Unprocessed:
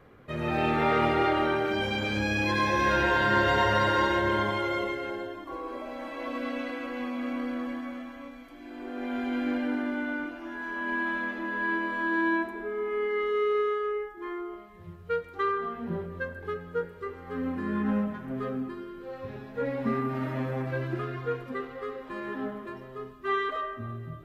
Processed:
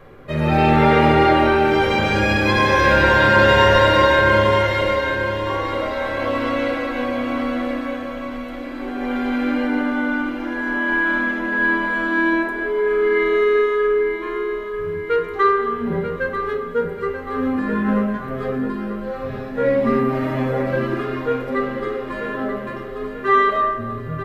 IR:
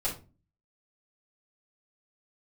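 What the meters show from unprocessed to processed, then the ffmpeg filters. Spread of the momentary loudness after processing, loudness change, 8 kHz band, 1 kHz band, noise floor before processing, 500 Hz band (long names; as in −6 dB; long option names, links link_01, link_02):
13 LU, +10.5 dB, can't be measured, +10.5 dB, −47 dBFS, +12.0 dB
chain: -filter_complex "[0:a]aecho=1:1:937|1874|2811|3748|4685|5622:0.335|0.167|0.0837|0.0419|0.0209|0.0105,asplit=2[link_01][link_02];[1:a]atrim=start_sample=2205[link_03];[link_02][link_03]afir=irnorm=-1:irlink=0,volume=-6.5dB[link_04];[link_01][link_04]amix=inputs=2:normalize=0,volume=6.5dB"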